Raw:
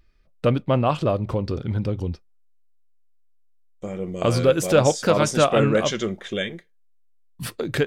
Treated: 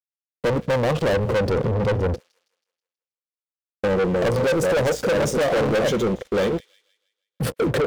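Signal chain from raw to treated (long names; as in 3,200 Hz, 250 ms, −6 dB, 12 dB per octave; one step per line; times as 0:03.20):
tilt shelving filter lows +6.5 dB, about 830 Hz
leveller curve on the samples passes 5
high-pass filter 140 Hz 6 dB per octave
mains hum 60 Hz, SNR 19 dB
noise gate −17 dBFS, range −12 dB
dead-zone distortion −30 dBFS
parametric band 500 Hz +12 dB 0.45 octaves
automatic gain control
delay with a high-pass on its return 161 ms, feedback 42%, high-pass 3,100 Hz, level −19.5 dB
soft clipping −17.5 dBFS, distortion −6 dB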